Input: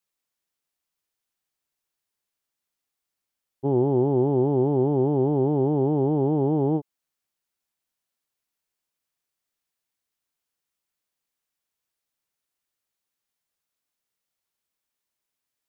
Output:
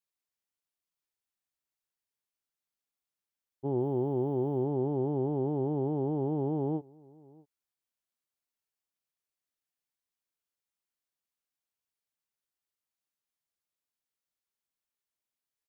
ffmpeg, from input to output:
ffmpeg -i in.wav -filter_complex "[0:a]asettb=1/sr,asplit=3[link_01][link_02][link_03];[link_01]atrim=end=3.804[link_04];[link_02]atrim=start=3.8:end=4.64,asetpts=PTS-STARTPTS,afade=type=in:duration=0.004:curve=qsin,afade=type=out:start_time=0.836:duration=0.004:curve=qsin,aemphasis=mode=production:type=50fm[link_05];[link_03]atrim=start=4.636[link_06];[link_04][link_05]acrossfade=duration=0.004:curve1=hsin:curve2=qsin[link_07];[link_07][link_06]acrossfade=duration=0.004:curve1=qsin:curve2=hsin,asplit=2[link_08][link_09];[link_09]adelay=641.4,volume=-25dB,highshelf=frequency=4000:gain=-14.4[link_10];[link_08][link_10]amix=inputs=2:normalize=0,volume=-8.5dB" out.wav

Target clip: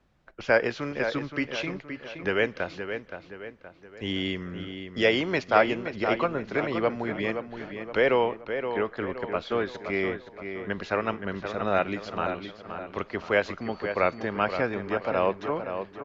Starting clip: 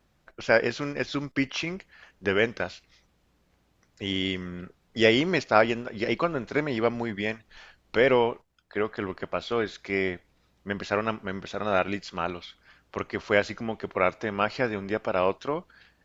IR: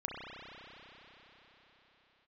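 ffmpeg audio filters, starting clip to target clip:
-filter_complex "[0:a]acrossover=split=410|650[link_01][link_02][link_03];[link_01]alimiter=level_in=0.5dB:limit=-24dB:level=0:latency=1:release=473,volume=-0.5dB[link_04];[link_04][link_02][link_03]amix=inputs=3:normalize=0,asettb=1/sr,asplit=3[link_05][link_06][link_07];[link_05]atrim=end=13.614[link_08];[link_06]atrim=start=13.61:end=14.27,asetpts=PTS-STARTPTS,afade=type=in:duration=0.004:curve=qsin,afade=type=out:start_time=0.656:duration=0.004:curve=qsin,aeval=exprs='val(0)+0.00316*sin(2*PI*4500*n/s)':channel_layout=same[link_09];[link_07]atrim=start=14.266[link_10];[link_08][link_09]acrossfade=duration=0.004:curve1=hsin:curve2=qsin[link_11];[link_11][link_10]acrossfade=duration=0.004:curve1=qsin:curve2=hsin,aemphasis=mode=reproduction:type=50fm,asplit=2[link_12][link_13];[link_13]adelay=521,lowpass=frequency=3300:poles=1,volume=-8dB,asplit=2[link_14][link_15];[link_15]adelay=521,lowpass=frequency=3300:poles=1,volume=0.46,asplit=2[link_16][link_17];[link_17]adelay=521,lowpass=frequency=3300:poles=1,volume=0.46,asplit=2[link_18][link_19];[link_19]adelay=521,lowpass=frequency=3300:poles=1,volume=0.46,asplit=2[link_20][link_21];[link_21]adelay=521,lowpass=frequency=3300:poles=1,volume=0.46[link_22];[link_12][link_14][link_16][link_18][link_20][link_22]amix=inputs=6:normalize=0"

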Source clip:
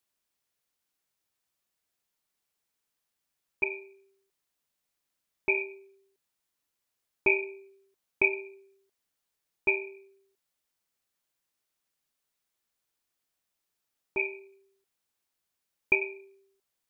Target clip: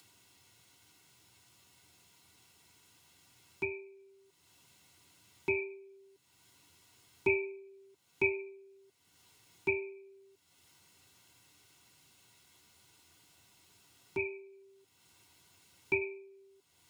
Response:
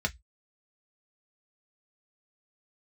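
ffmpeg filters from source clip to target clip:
-filter_complex "[0:a]acompressor=mode=upward:threshold=-37dB:ratio=2.5[link_01];[1:a]atrim=start_sample=2205,asetrate=66150,aresample=44100[link_02];[link_01][link_02]afir=irnorm=-1:irlink=0,volume=-7dB"

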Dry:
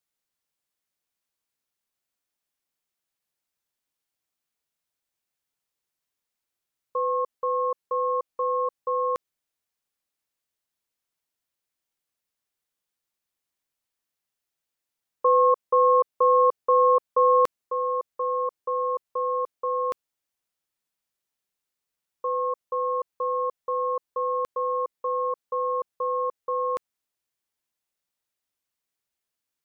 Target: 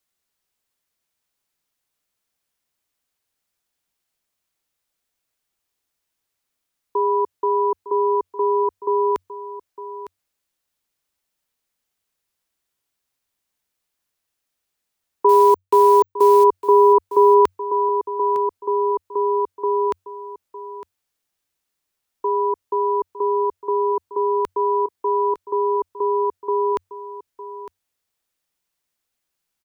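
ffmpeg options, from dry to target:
ffmpeg -i in.wav -filter_complex "[0:a]asettb=1/sr,asplit=3[link_01][link_02][link_03];[link_01]atrim=end=15.294[link_04];[link_02]atrim=start=15.29:end=16.44,asetpts=PTS-STARTPTS,afade=type=in:duration=0.004:curve=qsin,afade=type=out:start_time=1.146:duration=0.004:curve=qsin,acrusher=bits=7:dc=4:mix=0:aa=0.000001[link_05];[link_03]atrim=start=16.436[link_06];[link_04][link_05]acrossfade=duration=0.004:curve1=hsin:curve2=qsin[link_07];[link_07][link_06]acrossfade=duration=0.004:curve1=qsin:curve2=hsin,afreqshift=-95,aecho=1:1:907:0.2,volume=6dB" out.wav

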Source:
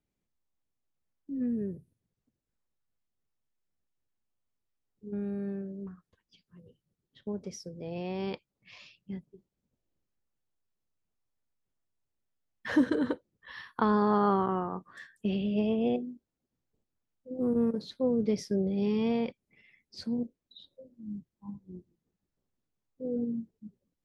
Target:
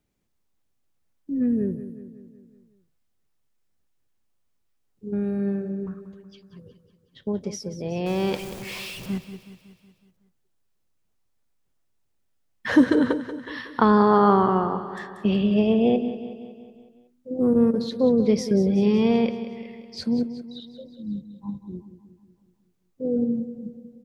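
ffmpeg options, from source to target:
ffmpeg -i in.wav -filter_complex "[0:a]asettb=1/sr,asplit=3[link_01][link_02][link_03];[link_01]atrim=end=8.064[link_04];[link_02]atrim=start=8.06:end=9.18,asetpts=PTS-STARTPTS,afade=type=in:duration=0.004:curve=qsin,afade=type=out:start_time=1.116:duration=0.004:curve=qsin,aeval=exprs='val(0)+0.5*0.00841*sgn(val(0))':channel_layout=same[link_05];[link_03]atrim=start=9.176[link_06];[link_04][link_05]acrossfade=duration=0.004:curve1=hsin:curve2=qsin[link_07];[link_07][link_06]acrossfade=duration=0.004:curve1=qsin:curve2=hsin,asplit=2[link_08][link_09];[link_09]aecho=0:1:185|370|555|740|925|1110:0.237|0.133|0.0744|0.0416|0.0233|0.0131[link_10];[link_08][link_10]amix=inputs=2:normalize=0,volume=8.5dB" out.wav

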